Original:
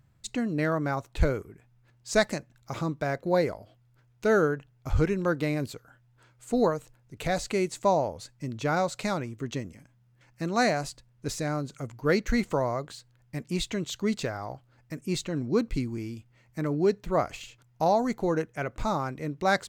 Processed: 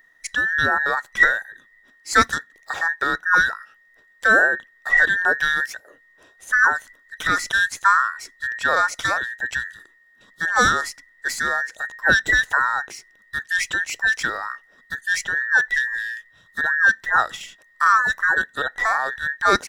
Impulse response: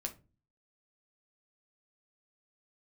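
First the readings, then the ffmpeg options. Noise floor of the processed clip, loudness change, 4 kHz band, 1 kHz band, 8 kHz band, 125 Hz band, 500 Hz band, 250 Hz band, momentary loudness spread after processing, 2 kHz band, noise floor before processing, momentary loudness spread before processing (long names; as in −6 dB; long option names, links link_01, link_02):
−57 dBFS, +9.0 dB, +8.5 dB, +9.5 dB, +8.0 dB, −9.5 dB, −4.5 dB, −8.0 dB, 13 LU, +19.5 dB, −64 dBFS, 14 LU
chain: -af "afftfilt=real='real(if(between(b,1,1012),(2*floor((b-1)/92)+1)*92-b,b),0)':imag='imag(if(between(b,1,1012),(2*floor((b-1)/92)+1)*92-b,b),0)*if(between(b,1,1012),-1,1)':win_size=2048:overlap=0.75,volume=7dB"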